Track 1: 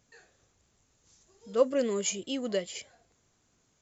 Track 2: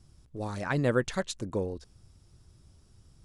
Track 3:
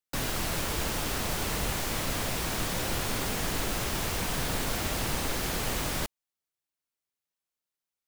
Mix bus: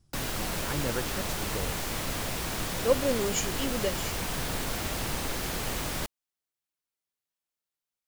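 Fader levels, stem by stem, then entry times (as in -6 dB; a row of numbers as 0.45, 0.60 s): 0.0, -7.0, -1.5 dB; 1.30, 0.00, 0.00 s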